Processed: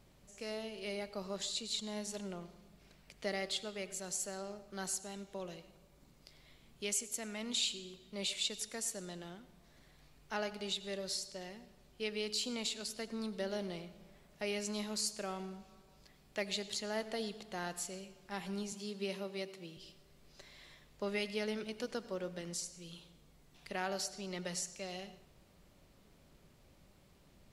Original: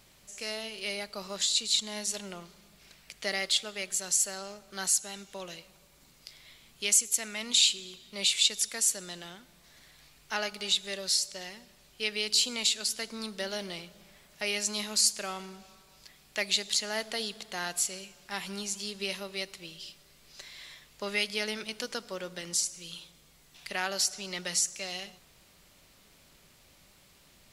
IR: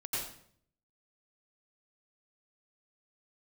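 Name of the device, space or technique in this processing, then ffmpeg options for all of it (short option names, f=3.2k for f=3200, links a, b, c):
filtered reverb send: -filter_complex "[0:a]asettb=1/sr,asplit=3[a][b][c];[a]atrim=end=18.724[d];[b]atrim=start=18.72:end=19.77,asetpts=PTS-STARTPTS,afade=t=in:d=0.004:c=qsin,afade=t=out:st=1.046:d=0.004:c=qsin,highpass=f=130:w=0.5412,highpass=f=130:w=1.3066[e];[c]atrim=start=19.766[f];[d][e]acrossfade=d=0.004:c1=hsin:c2=qsin[g];[g][f]acrossfade=d=0.004:c1=qsin:c2=hsin,tiltshelf=f=970:g=7,asplit=2[h][i];[i]highpass=280,lowpass=7.7k[j];[1:a]atrim=start_sample=2205[k];[j][k]afir=irnorm=-1:irlink=0,volume=-17dB[l];[h][l]amix=inputs=2:normalize=0,volume=-6dB"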